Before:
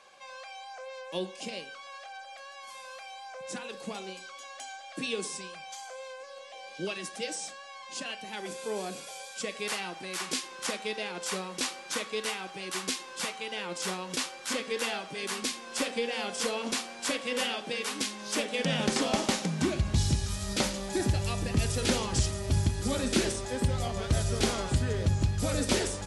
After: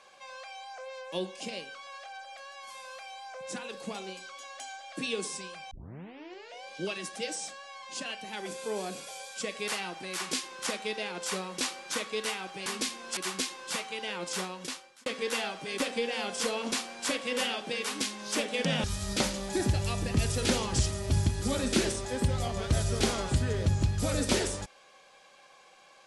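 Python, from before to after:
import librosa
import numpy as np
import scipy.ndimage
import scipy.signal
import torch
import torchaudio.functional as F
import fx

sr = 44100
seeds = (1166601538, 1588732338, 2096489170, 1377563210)

y = fx.edit(x, sr, fx.tape_start(start_s=5.71, length_s=0.92),
    fx.fade_out_span(start_s=13.82, length_s=0.73),
    fx.move(start_s=15.29, length_s=0.51, to_s=12.66),
    fx.cut(start_s=18.84, length_s=1.4), tone=tone)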